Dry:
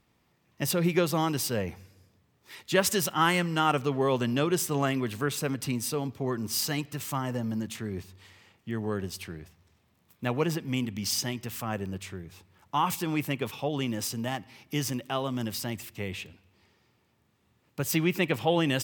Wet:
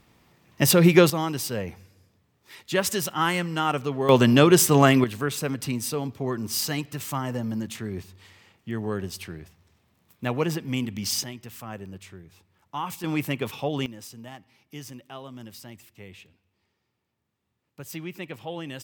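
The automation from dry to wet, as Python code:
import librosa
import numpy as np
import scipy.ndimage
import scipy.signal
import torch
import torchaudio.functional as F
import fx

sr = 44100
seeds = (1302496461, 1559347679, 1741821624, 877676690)

y = fx.gain(x, sr, db=fx.steps((0.0, 9.5), (1.1, 0.0), (4.09, 10.5), (5.04, 2.0), (11.24, -5.0), (13.04, 2.5), (13.86, -10.0)))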